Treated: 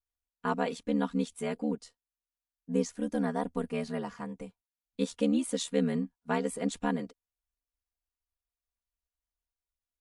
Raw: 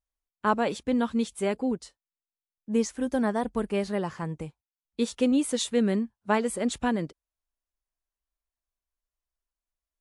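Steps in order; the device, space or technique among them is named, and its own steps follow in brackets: ring-modulated robot voice (ring modulator 38 Hz; comb 4.2 ms, depth 88%); trim -5 dB

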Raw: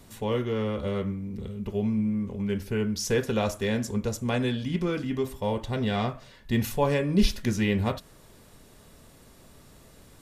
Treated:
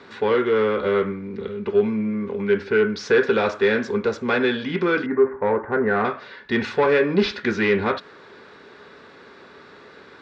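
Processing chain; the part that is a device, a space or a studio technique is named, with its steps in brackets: 5.06–6.05 s: steep low-pass 1.9 kHz 48 dB/octave; overdrive pedal into a guitar cabinet (overdrive pedal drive 19 dB, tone 7.2 kHz, clips at -10.5 dBFS; cabinet simulation 100–3900 Hz, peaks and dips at 130 Hz -7 dB, 410 Hz +8 dB, 650 Hz -6 dB, 1.5 kHz +7 dB, 3 kHz -7 dB)

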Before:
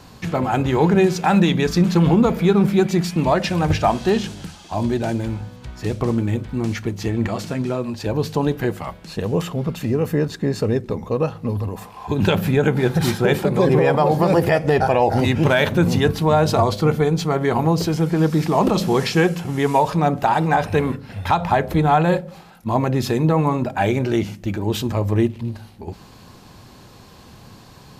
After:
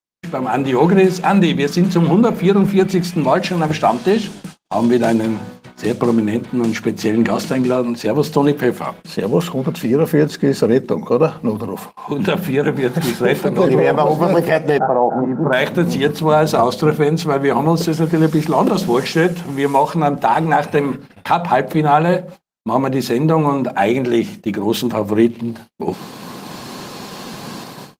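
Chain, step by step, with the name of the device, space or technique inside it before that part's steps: 14.78–15.53 s: Chebyshev band-pass 130–1400 Hz, order 4; video call (high-pass 160 Hz 24 dB/octave; level rider gain up to 16.5 dB; gate -31 dBFS, range -52 dB; trim -1 dB; Opus 24 kbps 48 kHz)

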